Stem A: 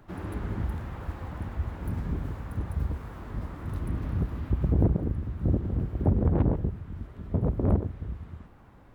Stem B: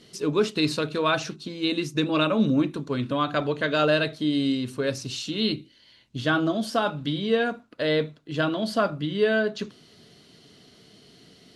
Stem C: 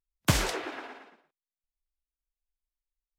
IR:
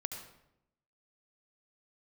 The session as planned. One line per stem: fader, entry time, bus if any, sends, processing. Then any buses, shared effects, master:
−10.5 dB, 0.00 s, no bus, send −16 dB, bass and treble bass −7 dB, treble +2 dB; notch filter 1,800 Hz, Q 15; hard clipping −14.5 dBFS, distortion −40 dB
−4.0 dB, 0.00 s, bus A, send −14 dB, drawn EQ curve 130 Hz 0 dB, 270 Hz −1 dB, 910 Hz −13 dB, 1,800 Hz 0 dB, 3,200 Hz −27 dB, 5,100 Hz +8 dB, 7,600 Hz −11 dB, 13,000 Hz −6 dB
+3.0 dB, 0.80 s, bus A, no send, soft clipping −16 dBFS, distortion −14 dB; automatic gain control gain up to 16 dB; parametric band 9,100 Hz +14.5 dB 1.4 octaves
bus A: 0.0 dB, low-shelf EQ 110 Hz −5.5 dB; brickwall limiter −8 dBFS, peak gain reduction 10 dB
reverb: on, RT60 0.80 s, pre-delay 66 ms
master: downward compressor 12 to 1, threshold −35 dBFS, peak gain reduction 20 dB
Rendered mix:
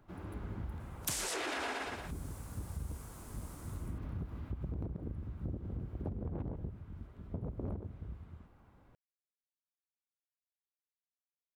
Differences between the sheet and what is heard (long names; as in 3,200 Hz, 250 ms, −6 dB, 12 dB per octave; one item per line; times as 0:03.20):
stem A: missing bass and treble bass −7 dB, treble +2 dB
stem B: muted
stem C +3.0 dB → +13.5 dB